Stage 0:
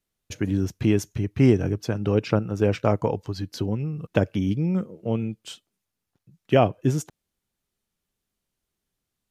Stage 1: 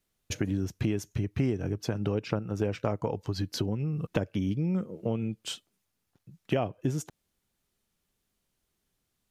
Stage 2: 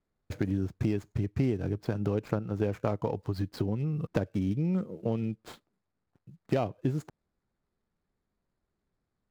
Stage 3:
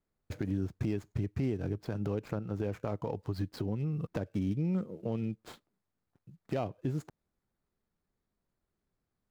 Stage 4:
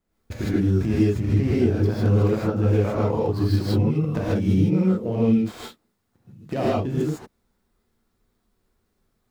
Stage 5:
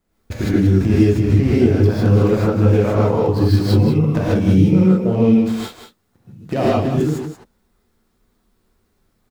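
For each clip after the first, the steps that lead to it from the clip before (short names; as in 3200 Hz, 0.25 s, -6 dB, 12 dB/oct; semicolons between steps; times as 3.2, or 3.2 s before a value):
compressor 4:1, threshold -30 dBFS, peak gain reduction 15.5 dB; gain +3 dB
median filter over 15 samples
limiter -20.5 dBFS, peak gain reduction 5.5 dB; gain -2.5 dB
non-linear reverb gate 0.18 s rising, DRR -7.5 dB; gain +5 dB
echo 0.181 s -9 dB; gain +6 dB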